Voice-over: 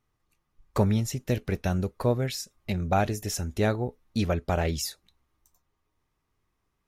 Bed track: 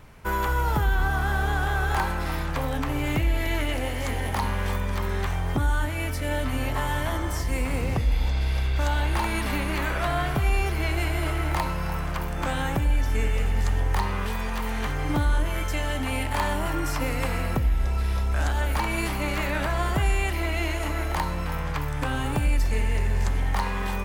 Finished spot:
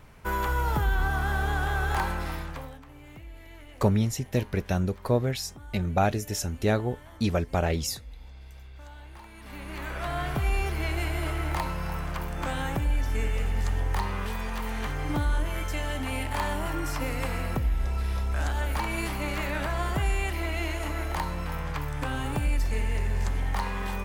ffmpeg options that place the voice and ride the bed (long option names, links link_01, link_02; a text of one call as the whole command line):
ffmpeg -i stem1.wav -i stem2.wav -filter_complex "[0:a]adelay=3050,volume=0.5dB[link_01];[1:a]volume=15.5dB,afade=type=out:start_time=2.13:duration=0.67:silence=0.112202,afade=type=in:start_time=9.37:duration=1.02:silence=0.125893[link_02];[link_01][link_02]amix=inputs=2:normalize=0" out.wav